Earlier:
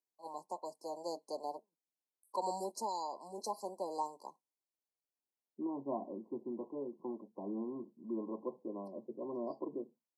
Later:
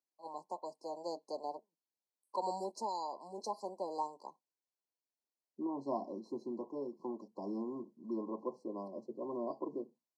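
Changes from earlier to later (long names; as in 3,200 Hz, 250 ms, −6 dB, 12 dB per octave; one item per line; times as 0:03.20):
second voice: remove Gaussian smoothing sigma 6.6 samples
master: add low-pass filter 5,900 Hz 12 dB per octave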